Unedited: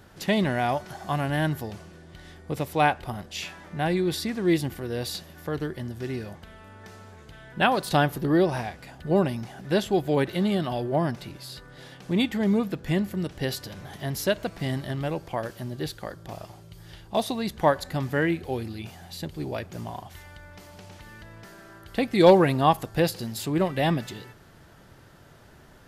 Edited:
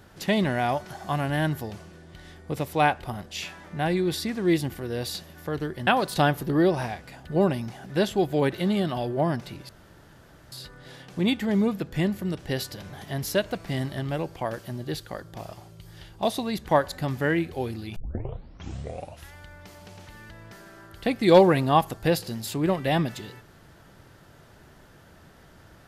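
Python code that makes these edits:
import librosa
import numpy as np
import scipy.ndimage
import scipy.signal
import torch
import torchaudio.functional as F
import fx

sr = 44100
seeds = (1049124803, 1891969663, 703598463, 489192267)

y = fx.edit(x, sr, fx.cut(start_s=5.87, length_s=1.75),
    fx.insert_room_tone(at_s=11.44, length_s=0.83),
    fx.tape_start(start_s=18.88, length_s=1.38), tone=tone)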